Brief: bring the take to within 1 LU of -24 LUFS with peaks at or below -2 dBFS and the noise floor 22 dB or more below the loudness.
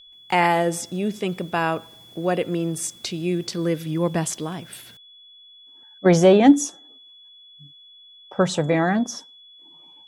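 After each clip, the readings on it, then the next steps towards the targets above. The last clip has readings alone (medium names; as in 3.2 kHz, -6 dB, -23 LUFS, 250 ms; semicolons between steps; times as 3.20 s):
steady tone 3.4 kHz; tone level -46 dBFS; loudness -21.5 LUFS; peak level -3.0 dBFS; loudness target -24.0 LUFS
-> band-stop 3.4 kHz, Q 30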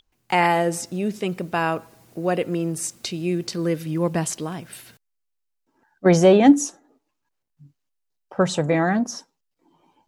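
steady tone not found; loudness -21.5 LUFS; peak level -3.0 dBFS; loudness target -24.0 LUFS
-> trim -2.5 dB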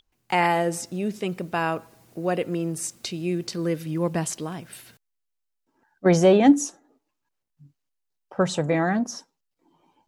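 loudness -24.0 LUFS; peak level -5.5 dBFS; noise floor -79 dBFS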